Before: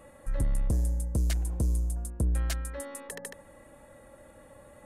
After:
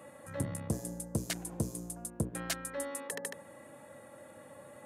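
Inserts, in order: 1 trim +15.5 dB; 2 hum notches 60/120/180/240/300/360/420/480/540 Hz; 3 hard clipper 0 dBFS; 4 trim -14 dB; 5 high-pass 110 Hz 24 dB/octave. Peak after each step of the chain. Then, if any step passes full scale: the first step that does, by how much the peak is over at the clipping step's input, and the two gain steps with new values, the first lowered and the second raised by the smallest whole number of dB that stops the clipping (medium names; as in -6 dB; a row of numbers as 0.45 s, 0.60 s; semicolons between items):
-6.0 dBFS, -4.0 dBFS, -4.0 dBFS, -18.0 dBFS, -17.0 dBFS; nothing clips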